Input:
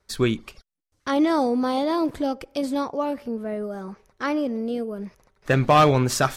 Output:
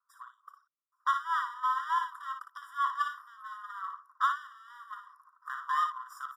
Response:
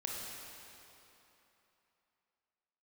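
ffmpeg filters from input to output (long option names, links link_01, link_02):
-filter_complex "[0:a]acrossover=split=120|3400[link_01][link_02][link_03];[link_02]alimiter=limit=-12.5dB:level=0:latency=1:release=131[link_04];[link_01][link_04][link_03]amix=inputs=3:normalize=0,equalizer=frequency=125:width_type=o:width=1:gain=-8,equalizer=frequency=500:width_type=o:width=1:gain=-7,equalizer=frequency=2000:width_type=o:width=1:gain=-12,equalizer=frequency=4000:width_type=o:width=1:gain=-12,equalizer=frequency=8000:width_type=o:width=1:gain=-6,acompressor=threshold=-31dB:ratio=2.5,highshelf=frequency=1800:width_type=q:width=3:gain=-12.5,dynaudnorm=framelen=110:gausssize=13:maxgain=13.5dB,aeval=exprs='clip(val(0),-1,0.0708)':channel_layout=same,asplit=2[link_05][link_06];[link_06]aecho=0:1:33|57:0.126|0.447[link_07];[link_05][link_07]amix=inputs=2:normalize=0,afftfilt=real='re*eq(mod(floor(b*sr/1024/970),2),1)':imag='im*eq(mod(floor(b*sr/1024/970),2),1)':win_size=1024:overlap=0.75,volume=-5.5dB"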